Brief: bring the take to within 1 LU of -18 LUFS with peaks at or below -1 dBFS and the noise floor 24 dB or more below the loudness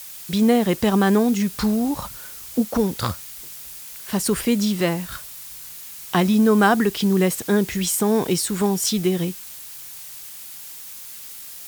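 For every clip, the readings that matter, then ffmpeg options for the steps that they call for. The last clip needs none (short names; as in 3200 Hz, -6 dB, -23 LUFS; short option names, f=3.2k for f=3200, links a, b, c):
noise floor -38 dBFS; noise floor target -45 dBFS; loudness -20.5 LUFS; peak -5.0 dBFS; loudness target -18.0 LUFS
-> -af "afftdn=nr=7:nf=-38"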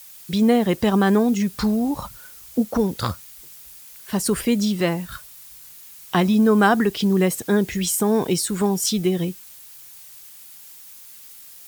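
noise floor -44 dBFS; noise floor target -45 dBFS
-> -af "afftdn=nr=6:nf=-44"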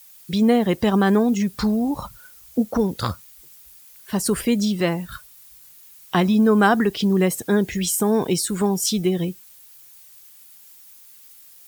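noise floor -48 dBFS; loudness -20.5 LUFS; peak -5.0 dBFS; loudness target -18.0 LUFS
-> -af "volume=2.5dB"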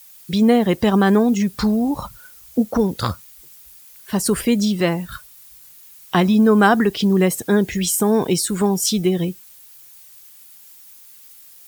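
loudness -18.0 LUFS; peak -2.5 dBFS; noise floor -45 dBFS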